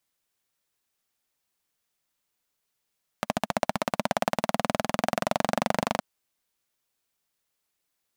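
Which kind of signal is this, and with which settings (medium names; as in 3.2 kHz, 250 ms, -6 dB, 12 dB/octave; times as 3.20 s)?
single-cylinder engine model, changing speed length 2.77 s, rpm 1700, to 3000, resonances 220/640 Hz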